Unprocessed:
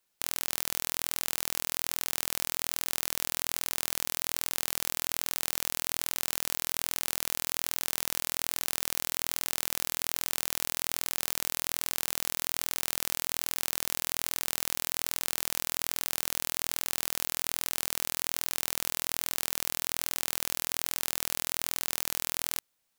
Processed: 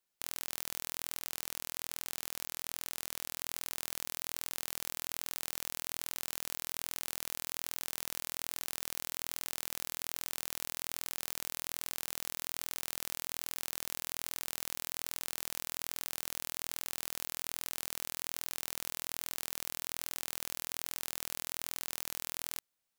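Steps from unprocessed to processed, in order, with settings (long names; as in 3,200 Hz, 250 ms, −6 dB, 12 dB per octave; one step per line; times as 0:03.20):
0:01.19–0:03.41: highs frequency-modulated by the lows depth 0.59 ms
level −7.5 dB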